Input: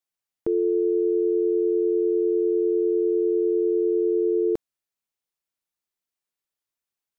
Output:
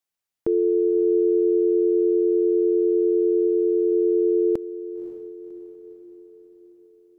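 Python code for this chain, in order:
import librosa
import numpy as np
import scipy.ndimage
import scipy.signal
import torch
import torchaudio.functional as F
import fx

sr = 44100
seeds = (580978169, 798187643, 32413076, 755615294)

y = fx.bass_treble(x, sr, bass_db=-2, treble_db=5, at=(3.47, 3.92))
y = fx.echo_diffused(y, sr, ms=547, feedback_pct=52, wet_db=-14)
y = F.gain(torch.from_numpy(y), 2.0).numpy()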